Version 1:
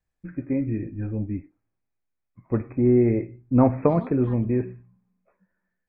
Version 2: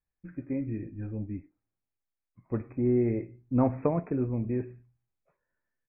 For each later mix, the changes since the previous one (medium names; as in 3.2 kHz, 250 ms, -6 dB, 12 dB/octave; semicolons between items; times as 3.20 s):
first voice -7.0 dB; second voice: entry +2.85 s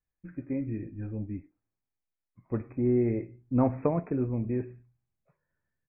second voice: add peaking EQ 98 Hz +14 dB 2.6 oct